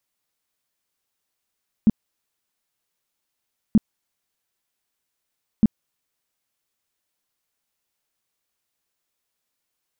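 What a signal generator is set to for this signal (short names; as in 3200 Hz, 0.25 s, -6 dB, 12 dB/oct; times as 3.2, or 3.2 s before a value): tone bursts 217 Hz, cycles 6, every 1.88 s, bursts 3, -9.5 dBFS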